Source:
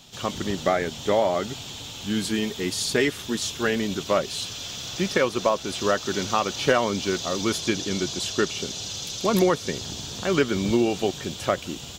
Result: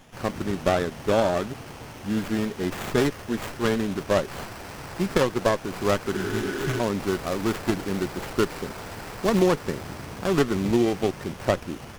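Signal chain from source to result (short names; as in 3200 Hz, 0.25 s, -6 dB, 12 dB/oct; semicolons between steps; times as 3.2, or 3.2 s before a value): tracing distortion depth 0.25 ms; spectral repair 6.17–6.77, 230–4000 Hz before; running maximum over 9 samples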